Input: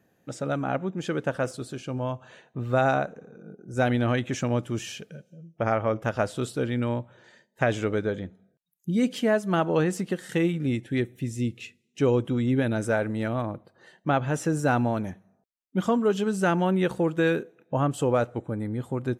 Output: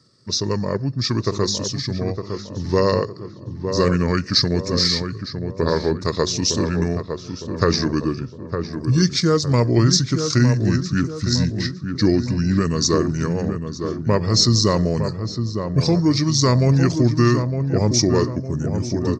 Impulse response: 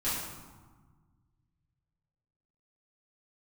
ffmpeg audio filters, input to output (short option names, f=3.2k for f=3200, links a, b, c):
-filter_complex "[0:a]highpass=140,equalizer=f=160:t=q:w=4:g=9,equalizer=f=1.1k:t=q:w=4:g=-10,equalizer=f=2.4k:t=q:w=4:g=4,equalizer=f=4.4k:t=q:w=4:g=-5,lowpass=f=6.9k:w=0.5412,lowpass=f=6.9k:w=1.3066,asetrate=32097,aresample=44100,atempo=1.37395,asplit=2[a][b];[b]adelay=909,lowpass=f=1.4k:p=1,volume=-6.5dB,asplit=2[c][d];[d]adelay=909,lowpass=f=1.4k:p=1,volume=0.47,asplit=2[e][f];[f]adelay=909,lowpass=f=1.4k:p=1,volume=0.47,asplit=2[g][h];[h]adelay=909,lowpass=f=1.4k:p=1,volume=0.47,asplit=2[i][j];[j]adelay=909,lowpass=f=1.4k:p=1,volume=0.47,asplit=2[k][l];[l]adelay=909,lowpass=f=1.4k:p=1,volume=0.47[m];[c][e][g][i][k][m]amix=inputs=6:normalize=0[n];[a][n]amix=inputs=2:normalize=0,aexciter=amount=12.9:drive=7.3:freq=4k,volume=5.5dB"